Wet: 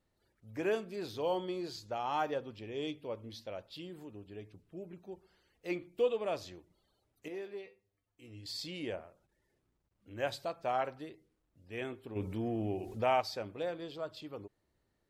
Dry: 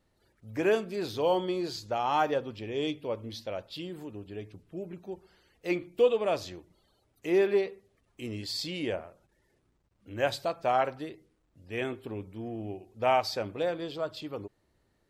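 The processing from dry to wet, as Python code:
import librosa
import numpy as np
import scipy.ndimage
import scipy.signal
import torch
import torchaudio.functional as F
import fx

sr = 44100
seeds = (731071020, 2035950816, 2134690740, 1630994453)

y = fx.comb_fb(x, sr, f0_hz=100.0, decay_s=0.22, harmonics='odd', damping=0.0, mix_pct=80, at=(7.28, 8.46))
y = fx.env_flatten(y, sr, amount_pct=50, at=(12.15, 13.2), fade=0.02)
y = y * librosa.db_to_amplitude(-7.0)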